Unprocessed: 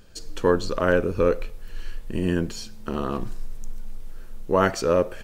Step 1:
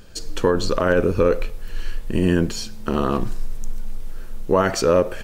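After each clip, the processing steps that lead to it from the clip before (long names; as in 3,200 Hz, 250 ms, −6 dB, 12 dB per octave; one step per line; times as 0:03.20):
brickwall limiter −14 dBFS, peak gain reduction 8.5 dB
level +6.5 dB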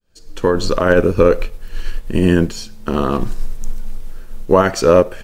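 fade in at the beginning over 0.59 s
expander for the loud parts 1.5 to 1, over −31 dBFS
level +6.5 dB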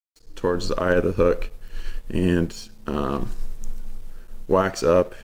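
dead-zone distortion −42.5 dBFS
level −7 dB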